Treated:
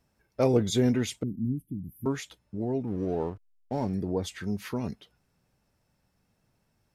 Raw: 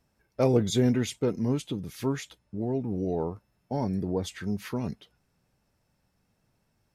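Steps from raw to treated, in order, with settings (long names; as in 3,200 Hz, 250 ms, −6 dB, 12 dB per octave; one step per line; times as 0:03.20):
0:01.23–0:02.06: inverse Chebyshev band-stop filter 520–7,500 Hz, stop band 40 dB
dynamic equaliser 150 Hz, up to −3 dB, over −41 dBFS, Q 2.6
0:02.87–0:03.94: slack as between gear wheels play −42.5 dBFS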